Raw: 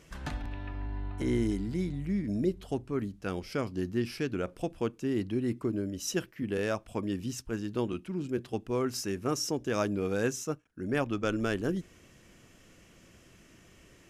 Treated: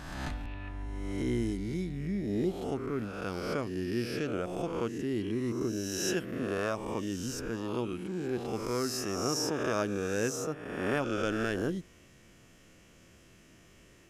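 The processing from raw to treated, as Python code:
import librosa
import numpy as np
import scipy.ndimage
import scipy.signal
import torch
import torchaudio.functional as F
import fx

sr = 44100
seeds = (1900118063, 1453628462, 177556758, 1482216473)

y = fx.spec_swells(x, sr, rise_s=1.27)
y = F.gain(torch.from_numpy(y), -3.5).numpy()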